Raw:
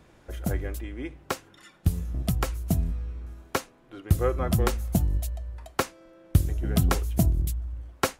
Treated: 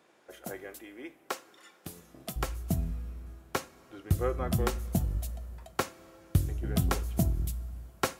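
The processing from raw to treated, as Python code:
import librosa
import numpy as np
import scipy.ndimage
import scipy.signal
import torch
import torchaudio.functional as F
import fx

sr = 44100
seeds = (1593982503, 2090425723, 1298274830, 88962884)

y = fx.highpass(x, sr, hz=fx.steps((0.0, 350.0), (2.36, 50.0)), slope=12)
y = fx.rev_double_slope(y, sr, seeds[0], early_s=0.3, late_s=3.8, knee_db=-18, drr_db=12.5)
y = F.gain(torch.from_numpy(y), -4.5).numpy()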